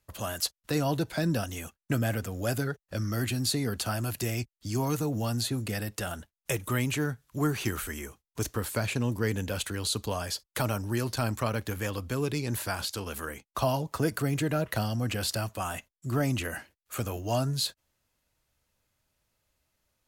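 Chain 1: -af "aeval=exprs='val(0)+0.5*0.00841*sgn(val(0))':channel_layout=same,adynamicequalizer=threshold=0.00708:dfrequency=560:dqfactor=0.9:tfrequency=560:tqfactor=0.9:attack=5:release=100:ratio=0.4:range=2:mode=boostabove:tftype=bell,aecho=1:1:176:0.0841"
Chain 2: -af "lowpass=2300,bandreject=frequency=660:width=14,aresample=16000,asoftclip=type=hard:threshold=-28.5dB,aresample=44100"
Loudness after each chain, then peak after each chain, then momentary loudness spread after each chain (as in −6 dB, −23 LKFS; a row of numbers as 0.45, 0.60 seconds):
−29.0, −35.0 LKFS; −12.5, −27.0 dBFS; 14, 6 LU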